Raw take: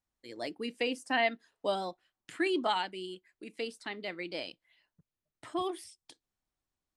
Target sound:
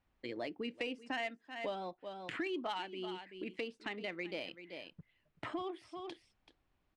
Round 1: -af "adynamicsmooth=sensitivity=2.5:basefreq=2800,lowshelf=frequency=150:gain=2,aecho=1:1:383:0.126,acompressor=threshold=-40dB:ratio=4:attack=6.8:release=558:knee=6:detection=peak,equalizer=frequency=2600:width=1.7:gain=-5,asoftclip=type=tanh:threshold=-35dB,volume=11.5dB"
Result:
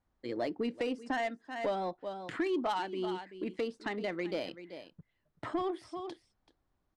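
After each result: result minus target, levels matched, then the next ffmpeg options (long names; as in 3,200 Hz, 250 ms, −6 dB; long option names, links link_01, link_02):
downward compressor: peak gain reduction −8.5 dB; 2,000 Hz band −4.5 dB
-af "adynamicsmooth=sensitivity=2.5:basefreq=2800,lowshelf=frequency=150:gain=2,aecho=1:1:383:0.126,acompressor=threshold=-51dB:ratio=4:attack=6.8:release=558:knee=6:detection=peak,equalizer=frequency=2600:width=1.7:gain=-5,asoftclip=type=tanh:threshold=-35dB,volume=11.5dB"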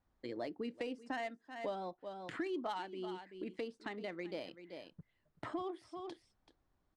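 2,000 Hz band −3.5 dB
-af "adynamicsmooth=sensitivity=2.5:basefreq=2800,lowshelf=frequency=150:gain=2,aecho=1:1:383:0.126,acompressor=threshold=-51dB:ratio=4:attack=6.8:release=558:knee=6:detection=peak,equalizer=frequency=2600:width=1.7:gain=5,asoftclip=type=tanh:threshold=-35dB,volume=11.5dB"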